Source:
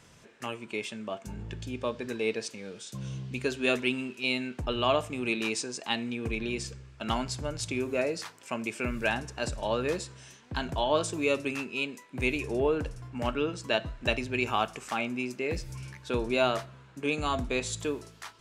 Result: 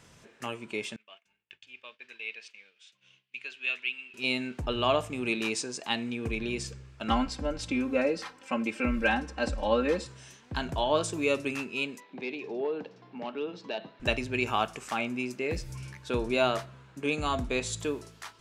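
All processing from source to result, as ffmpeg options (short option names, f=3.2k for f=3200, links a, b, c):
-filter_complex "[0:a]asettb=1/sr,asplit=3[a][b][c];[a]atrim=end=0.964[d];[b]atrim=start=0.96:end=4.14,asetpts=PTS-STARTPTS,afade=t=in:d=0.004:c=qsin,afade=t=out:st=3.176:d=0.004:c=qsin,bandpass=f=2.6k:t=q:w=2.8,agate=range=-33dB:threshold=-54dB:ratio=3:release=100:detection=peak[e];[c]atrim=start=4.136[f];[d][e]acrossfade=d=0.004:c1=hsin:c2=qsin[g];[g][f]acrossfade=d=0.004:c1=qsin:c2=hsin,asettb=1/sr,asplit=3[h][i][j];[h]atrim=end=7.084[k];[i]atrim=start=7.08:end=10.06,asetpts=PTS-STARTPTS,afade=t=in:d=0.004:c=qsin,afade=t=out:st=2.976:d=0.004:c=qsin,aemphasis=mode=reproduction:type=50fm,bandreject=f=6.8k:w=18,aecho=1:1:3.8:0.97,atrim=end_sample=131418[l];[j]atrim=start=10.056[m];[k][l]acrossfade=d=0.004:c1=hsin:c2=qsin[n];[n][m]acrossfade=d=0.004:c1=qsin:c2=hsin,asettb=1/sr,asplit=3[o][p][q];[o]atrim=end=12.004[r];[p]atrim=start=12:end=14,asetpts=PTS-STARTPTS,afade=t=in:d=0.004:c=qsin,afade=t=out:st=1.996:d=0.004:c=qsin,aeval=exprs='clip(val(0),-1,0.0944)':c=same,acompressor=threshold=-46dB:ratio=1.5:attack=3.2:release=140:knee=1:detection=peak,highpass=f=190:w=0.5412,highpass=f=190:w=1.3066,equalizer=f=190:t=q:w=4:g=5,equalizer=f=420:t=q:w=4:g=5,equalizer=f=800:t=q:w=4:g=6,equalizer=f=1.4k:t=q:w=4:g=-4,equalizer=f=3.8k:t=q:w=4:g=4,lowpass=f=4.7k:w=0.5412,lowpass=f=4.7k:w=1.3066[s];[q]atrim=start=13.996[t];[r][s]acrossfade=d=0.004:c1=hsin:c2=qsin[u];[u][t]acrossfade=d=0.004:c1=qsin:c2=hsin"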